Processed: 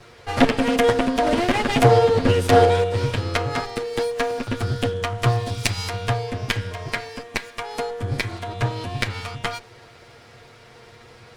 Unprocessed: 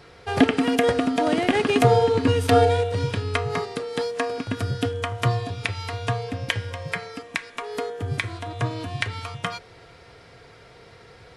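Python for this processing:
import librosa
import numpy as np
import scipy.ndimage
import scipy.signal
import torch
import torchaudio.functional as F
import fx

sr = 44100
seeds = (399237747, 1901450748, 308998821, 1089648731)

y = fx.lower_of_two(x, sr, delay_ms=8.5)
y = fx.bass_treble(y, sr, bass_db=2, treble_db=10, at=(5.46, 5.88), fade=0.02)
y = fx.doppler_dist(y, sr, depth_ms=0.23)
y = y * librosa.db_to_amplitude(3.0)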